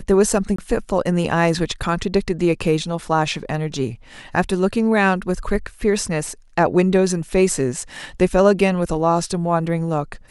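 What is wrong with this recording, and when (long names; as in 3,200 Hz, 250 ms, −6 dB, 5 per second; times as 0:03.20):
0:00.56–0:00.58: drop-out 24 ms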